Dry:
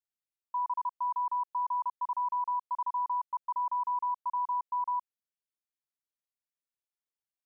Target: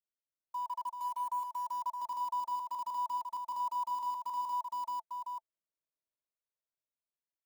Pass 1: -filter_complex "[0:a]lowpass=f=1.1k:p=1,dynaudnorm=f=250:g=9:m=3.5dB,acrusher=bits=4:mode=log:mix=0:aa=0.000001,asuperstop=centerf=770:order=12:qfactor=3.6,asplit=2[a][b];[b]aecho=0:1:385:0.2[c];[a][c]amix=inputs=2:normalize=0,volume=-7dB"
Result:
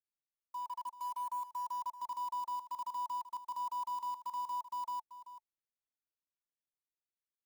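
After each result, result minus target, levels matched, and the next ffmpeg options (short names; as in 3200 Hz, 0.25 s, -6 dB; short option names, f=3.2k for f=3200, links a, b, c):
500 Hz band -5.5 dB; echo-to-direct -7.5 dB
-filter_complex "[0:a]lowpass=f=1.1k:p=1,dynaudnorm=f=250:g=9:m=3.5dB,acrusher=bits=4:mode=log:mix=0:aa=0.000001,asuperstop=centerf=770:order=12:qfactor=3.6,equalizer=f=690:t=o:w=0.68:g=11.5,asplit=2[a][b];[b]aecho=0:1:385:0.2[c];[a][c]amix=inputs=2:normalize=0,volume=-7dB"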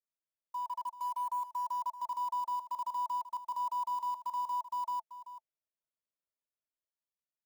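echo-to-direct -7.5 dB
-filter_complex "[0:a]lowpass=f=1.1k:p=1,dynaudnorm=f=250:g=9:m=3.5dB,acrusher=bits=4:mode=log:mix=0:aa=0.000001,asuperstop=centerf=770:order=12:qfactor=3.6,equalizer=f=690:t=o:w=0.68:g=11.5,asplit=2[a][b];[b]aecho=0:1:385:0.473[c];[a][c]amix=inputs=2:normalize=0,volume=-7dB"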